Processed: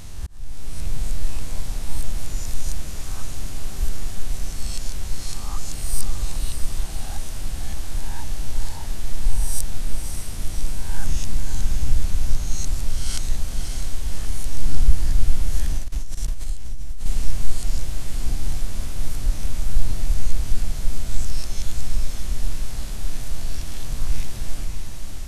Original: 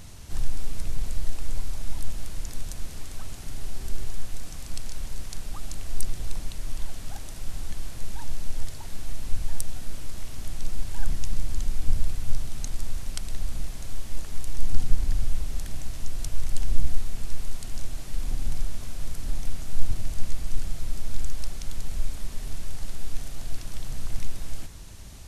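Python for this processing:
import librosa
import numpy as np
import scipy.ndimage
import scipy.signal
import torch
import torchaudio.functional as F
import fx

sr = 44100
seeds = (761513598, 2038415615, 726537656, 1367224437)

y = fx.spec_swells(x, sr, rise_s=1.04)
y = fx.auto_swell(y, sr, attack_ms=645.0)
y = fx.echo_diffused(y, sr, ms=589, feedback_pct=52, wet_db=-6.0)
y = fx.level_steps(y, sr, step_db=21, at=(15.78, 17.06))
y = y * librosa.db_to_amplitude(1.5)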